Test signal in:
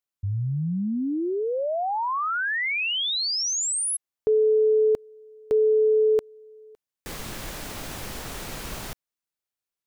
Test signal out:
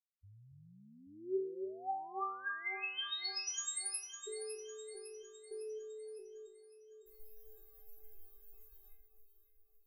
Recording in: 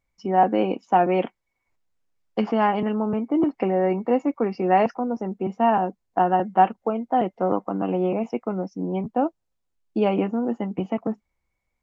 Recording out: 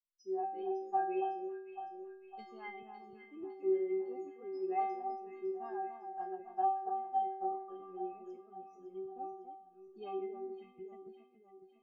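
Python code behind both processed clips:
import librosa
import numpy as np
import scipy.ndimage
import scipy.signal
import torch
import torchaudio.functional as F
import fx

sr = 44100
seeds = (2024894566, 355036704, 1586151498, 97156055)

y = fx.bin_expand(x, sr, power=2.0)
y = fx.stiff_resonator(y, sr, f0_hz=380.0, decay_s=0.72, stiffness=0.008)
y = fx.echo_alternate(y, sr, ms=278, hz=1400.0, feedback_pct=71, wet_db=-7)
y = y * 10.0 ** (5.0 / 20.0)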